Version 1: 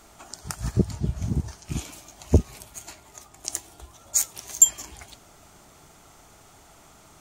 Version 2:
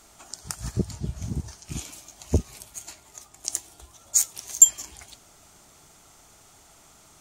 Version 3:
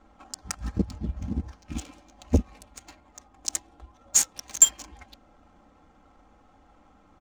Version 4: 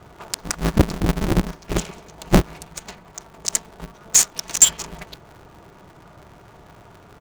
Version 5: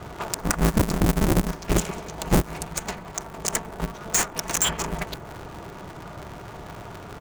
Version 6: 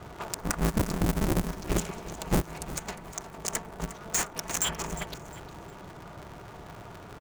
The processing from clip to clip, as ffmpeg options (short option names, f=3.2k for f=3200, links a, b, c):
-af "equalizer=f=7.7k:w=0.39:g=6.5,volume=-4.5dB"
-af "aecho=1:1:3.8:0.85,adynamicsmooth=sensitivity=7:basefreq=1.2k"
-af "alimiter=level_in=12dB:limit=-1dB:release=50:level=0:latency=1,aeval=exprs='val(0)*sgn(sin(2*PI*110*n/s))':c=same,volume=-1dB"
-filter_complex "[0:a]aeval=exprs='0.841*(cos(1*acos(clip(val(0)/0.841,-1,1)))-cos(1*PI/2))+0.237*(cos(5*acos(clip(val(0)/0.841,-1,1)))-cos(5*PI/2))':c=same,acrossover=split=2500|6300[a][b][c];[a]acompressor=threshold=-18dB:ratio=4[d];[b]acompressor=threshold=-41dB:ratio=4[e];[c]acompressor=threshold=-24dB:ratio=4[f];[d][e][f]amix=inputs=3:normalize=0"
-af "aecho=1:1:356|712|1068:0.178|0.0533|0.016,volume=-6dB"